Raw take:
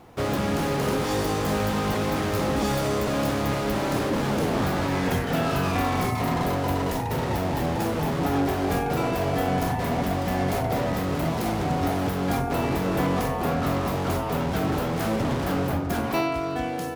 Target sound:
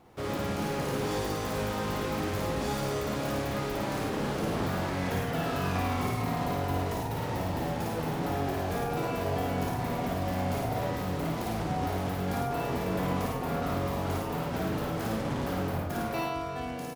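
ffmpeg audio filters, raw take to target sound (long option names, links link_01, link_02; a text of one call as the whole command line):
ffmpeg -i in.wav -af "aecho=1:1:55.39|107.9:0.794|0.631,volume=-9dB" out.wav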